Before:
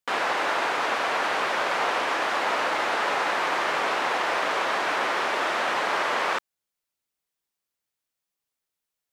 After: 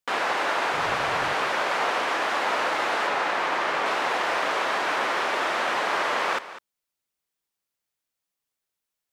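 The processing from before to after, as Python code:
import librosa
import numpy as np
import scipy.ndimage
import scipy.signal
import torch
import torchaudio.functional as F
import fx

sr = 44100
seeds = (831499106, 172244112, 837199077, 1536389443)

y = fx.octave_divider(x, sr, octaves=2, level_db=-1.0, at=(0.73, 1.33))
y = fx.high_shelf(y, sr, hz=6300.0, db=-6.5, at=(3.07, 3.86))
y = y + 10.0 ** (-14.5 / 20.0) * np.pad(y, (int(200 * sr / 1000.0), 0))[:len(y)]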